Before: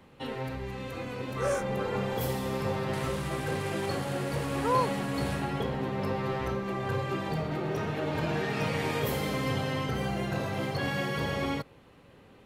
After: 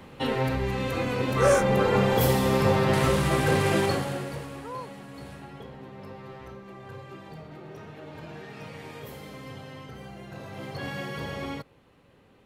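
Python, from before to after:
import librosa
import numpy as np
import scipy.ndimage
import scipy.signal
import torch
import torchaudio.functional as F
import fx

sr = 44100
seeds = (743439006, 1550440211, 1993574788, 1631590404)

y = fx.gain(x, sr, db=fx.line((3.78, 9.0), (4.21, -1.0), (4.71, -11.5), (10.23, -11.5), (10.84, -3.5)))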